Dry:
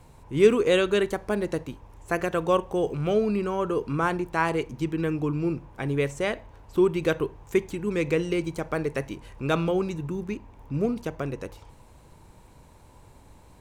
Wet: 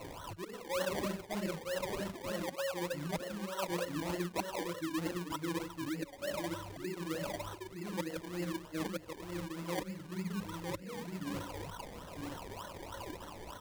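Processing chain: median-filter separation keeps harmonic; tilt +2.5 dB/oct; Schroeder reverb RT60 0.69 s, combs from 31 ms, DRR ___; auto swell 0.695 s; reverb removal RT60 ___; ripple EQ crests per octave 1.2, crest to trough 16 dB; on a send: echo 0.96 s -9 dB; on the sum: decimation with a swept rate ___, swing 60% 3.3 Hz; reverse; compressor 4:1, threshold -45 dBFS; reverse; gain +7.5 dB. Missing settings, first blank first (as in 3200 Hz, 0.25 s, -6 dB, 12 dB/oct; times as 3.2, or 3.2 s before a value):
-1 dB, 1.3 s, 26×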